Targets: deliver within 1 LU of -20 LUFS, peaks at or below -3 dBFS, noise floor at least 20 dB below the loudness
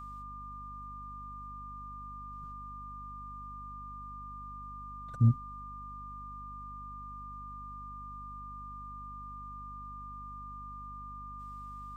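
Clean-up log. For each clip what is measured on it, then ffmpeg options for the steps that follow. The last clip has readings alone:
hum 50 Hz; highest harmonic 250 Hz; hum level -47 dBFS; steady tone 1.2 kHz; tone level -43 dBFS; loudness -40.5 LUFS; peak level -15.0 dBFS; loudness target -20.0 LUFS
-> -af "bandreject=f=50:t=h:w=4,bandreject=f=100:t=h:w=4,bandreject=f=150:t=h:w=4,bandreject=f=200:t=h:w=4,bandreject=f=250:t=h:w=4"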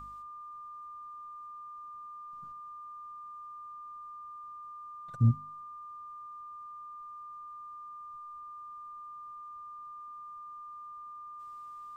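hum not found; steady tone 1.2 kHz; tone level -43 dBFS
-> -af "bandreject=f=1200:w=30"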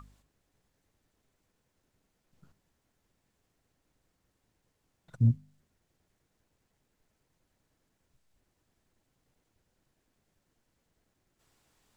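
steady tone not found; loudness -29.5 LUFS; peak level -15.0 dBFS; loudness target -20.0 LUFS
-> -af "volume=2.99"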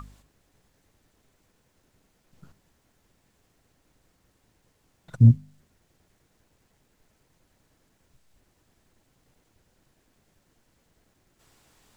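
loudness -19.5 LUFS; peak level -5.5 dBFS; noise floor -70 dBFS

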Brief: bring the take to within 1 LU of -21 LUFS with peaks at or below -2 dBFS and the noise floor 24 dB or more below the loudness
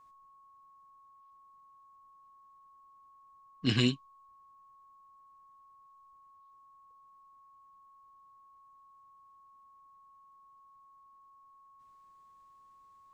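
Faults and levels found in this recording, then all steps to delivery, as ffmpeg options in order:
steady tone 1.1 kHz; tone level -57 dBFS; loudness -30.5 LUFS; peak level -12.5 dBFS; loudness target -21.0 LUFS
-> -af "bandreject=f=1100:w=30"
-af "volume=2.99"

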